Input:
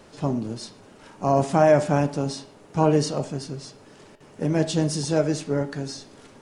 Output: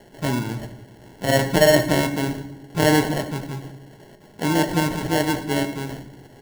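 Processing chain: dynamic EQ 300 Hz, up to +5 dB, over -37 dBFS, Q 4.1; sample-and-hold 36×; reverb RT60 0.95 s, pre-delay 4 ms, DRR 8 dB

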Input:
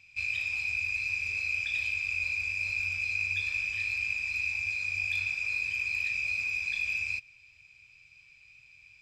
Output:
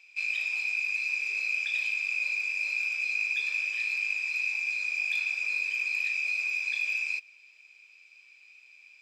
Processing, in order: steep high-pass 310 Hz 48 dB/oct; gain +1.5 dB

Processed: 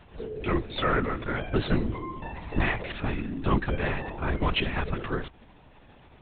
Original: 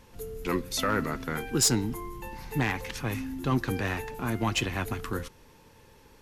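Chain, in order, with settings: LPC vocoder at 8 kHz whisper; gain +2.5 dB

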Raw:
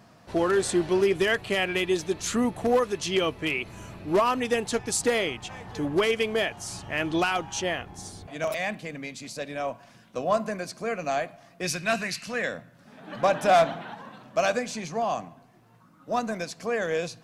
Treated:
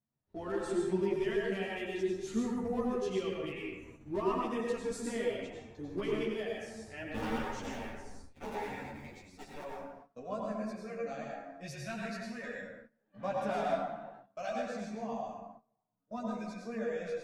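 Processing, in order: 7.14–9.64 cycle switcher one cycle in 3, inverted; low shelf 390 Hz +12 dB; analogue delay 65 ms, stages 1024, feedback 59%, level -17 dB; spectral noise reduction 8 dB; plate-style reverb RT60 1.2 s, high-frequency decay 0.5×, pre-delay 80 ms, DRR -2 dB; gate -33 dBFS, range -19 dB; high shelf 5900 Hz -5 dB; resonator 910 Hz, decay 0.15 s, harmonics all, mix 60%; ensemble effect; gain -7.5 dB

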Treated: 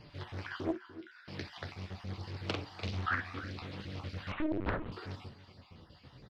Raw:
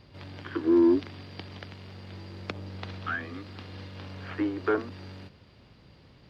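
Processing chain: random spectral dropouts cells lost 39%; compressor 10:1, threshold -30 dBFS, peak gain reduction 12.5 dB; flange 0.4 Hz, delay 6.3 ms, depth 9.4 ms, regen -22%; 0.71–1.28 ladder high-pass 1400 Hz, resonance 85%; flange 1.3 Hz, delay 6.6 ms, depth 3.9 ms, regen -66%; 2.39–3.06 doubler 45 ms -4 dB; echo 0.295 s -14.5 dB; non-linear reverb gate 80 ms flat, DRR 10 dB; 4.32–4.92 LPC vocoder at 8 kHz pitch kept; Doppler distortion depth 0.6 ms; gain +9 dB

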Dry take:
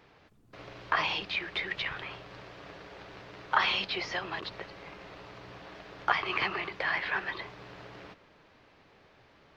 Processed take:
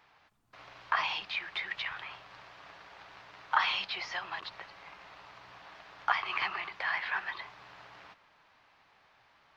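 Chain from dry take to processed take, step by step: resonant low shelf 620 Hz -9.5 dB, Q 1.5; gain -3 dB

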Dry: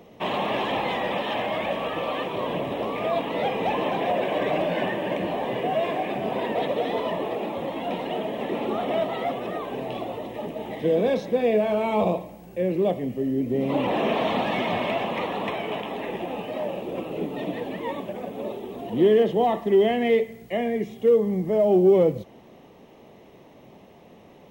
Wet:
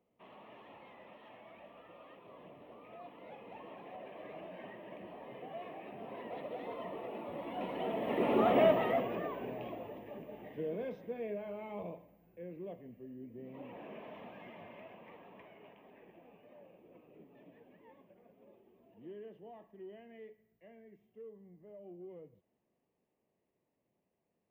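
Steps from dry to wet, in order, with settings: Doppler pass-by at 8.54, 13 m/s, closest 3.9 m; band shelf 5800 Hz -11 dB; notch 800 Hz, Q 20

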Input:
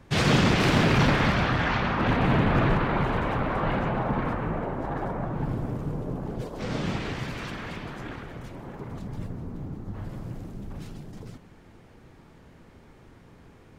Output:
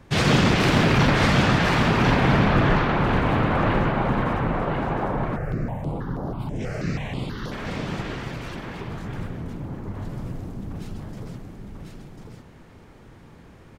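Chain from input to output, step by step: echo 1.045 s -4 dB; 5.36–7.52 step phaser 6.2 Hz 980–8000 Hz; gain +2.5 dB

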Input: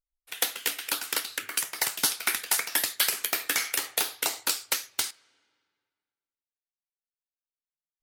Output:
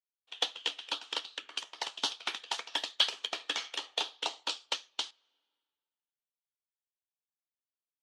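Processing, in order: speaker cabinet 310–5400 Hz, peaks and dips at 370 Hz -3 dB, 920 Hz +3 dB, 1500 Hz -7 dB, 2100 Hz -10 dB, 3200 Hz +8 dB, 5000 Hz -5 dB; upward expander 1.5:1, over -43 dBFS

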